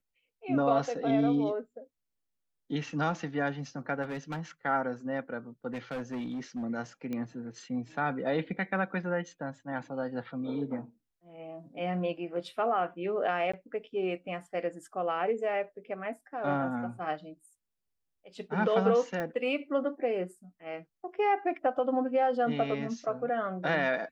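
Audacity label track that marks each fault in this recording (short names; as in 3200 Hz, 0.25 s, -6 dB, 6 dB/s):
4.020000	4.400000	clipped -32 dBFS
5.730000	6.640000	clipped -32 dBFS
7.130000	7.130000	pop -24 dBFS
13.520000	13.540000	gap 15 ms
19.200000	19.200000	pop -22 dBFS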